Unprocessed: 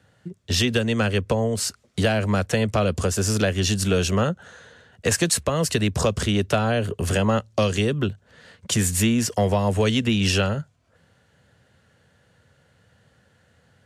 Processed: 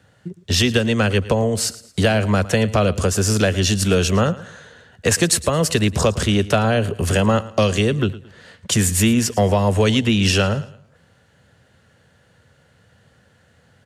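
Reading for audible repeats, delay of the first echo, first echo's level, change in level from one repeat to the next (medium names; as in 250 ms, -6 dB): 2, 111 ms, -18.0 dB, -9.0 dB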